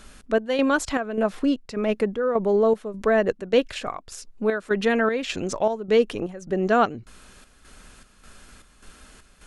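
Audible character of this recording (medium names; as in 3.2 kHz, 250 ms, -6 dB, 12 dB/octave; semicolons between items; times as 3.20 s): chopped level 1.7 Hz, depth 60%, duty 65%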